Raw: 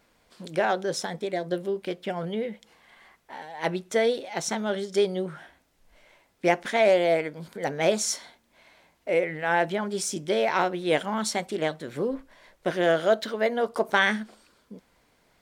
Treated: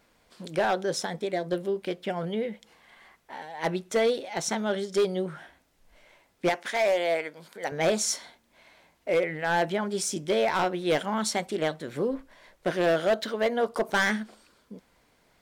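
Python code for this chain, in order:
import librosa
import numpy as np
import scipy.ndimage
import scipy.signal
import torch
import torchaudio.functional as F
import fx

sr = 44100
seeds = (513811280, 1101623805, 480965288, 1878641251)

y = fx.highpass(x, sr, hz=700.0, slope=6, at=(6.49, 7.72))
y = np.clip(y, -10.0 ** (-18.5 / 20.0), 10.0 ** (-18.5 / 20.0))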